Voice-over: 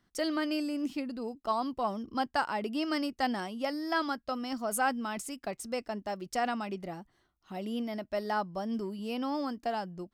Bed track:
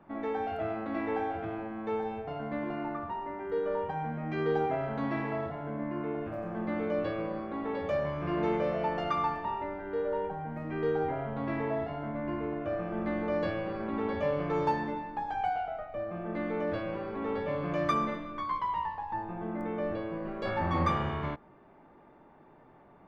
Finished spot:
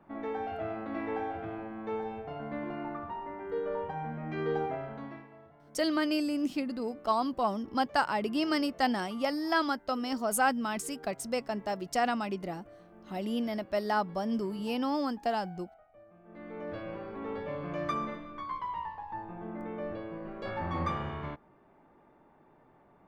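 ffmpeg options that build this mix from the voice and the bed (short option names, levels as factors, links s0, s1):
-filter_complex "[0:a]adelay=5600,volume=1.33[s0];[1:a]volume=4.73,afade=t=out:st=4.57:d=0.71:silence=0.125893,afade=t=in:st=16.24:d=0.65:silence=0.158489[s1];[s0][s1]amix=inputs=2:normalize=0"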